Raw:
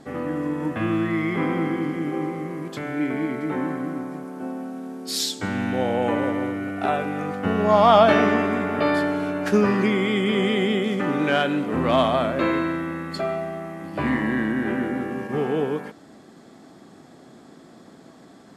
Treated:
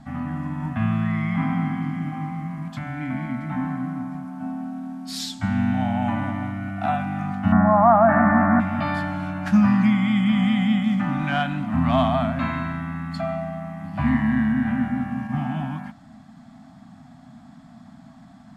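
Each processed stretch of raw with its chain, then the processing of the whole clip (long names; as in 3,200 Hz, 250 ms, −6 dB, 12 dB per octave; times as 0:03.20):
0:07.52–0:08.60: elliptic low-pass filter 1,800 Hz, stop band 60 dB + parametric band 99 Hz −6.5 dB 2 octaves + envelope flattener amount 70%
whole clip: Chebyshev band-stop filter 250–690 Hz, order 3; spectral tilt −2.5 dB per octave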